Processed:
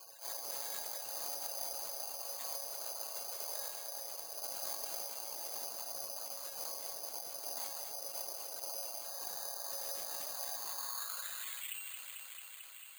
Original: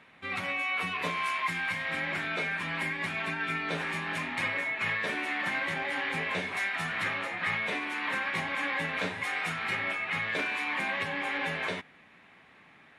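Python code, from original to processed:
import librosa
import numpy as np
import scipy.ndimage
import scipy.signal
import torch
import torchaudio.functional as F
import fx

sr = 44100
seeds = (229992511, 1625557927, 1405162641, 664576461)

p1 = fx.spec_box(x, sr, start_s=9.07, length_s=2.01, low_hz=440.0, high_hz=1900.0, gain_db=-17)
p2 = scipy.signal.sosfilt(scipy.signal.butter(2, 160.0, 'highpass', fs=sr, output='sos'), p1)
p3 = fx.spec_gate(p2, sr, threshold_db=-25, keep='weak')
p4 = fx.high_shelf(p3, sr, hz=3100.0, db=12.0)
p5 = fx.rider(p4, sr, range_db=10, speed_s=0.5)
p6 = p4 + (p5 * 10.0 ** (2.5 / 20.0))
p7 = fx.filter_sweep_bandpass(p6, sr, from_hz=700.0, to_hz=4900.0, start_s=10.56, end_s=12.34, q=4.4)
p8 = fx.whisperise(p7, sr, seeds[0])
p9 = fx.comb_fb(p8, sr, f0_hz=550.0, decay_s=0.34, harmonics='all', damping=0.0, mix_pct=80)
p10 = p9 + fx.echo_alternate(p9, sr, ms=111, hz=960.0, feedback_pct=74, wet_db=-10.5, dry=0)
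p11 = (np.kron(scipy.signal.resample_poly(p10, 1, 8), np.eye(8)[0]) * 8)[:len(p10)]
p12 = fx.env_flatten(p11, sr, amount_pct=70)
y = p12 * 10.0 ** (12.5 / 20.0)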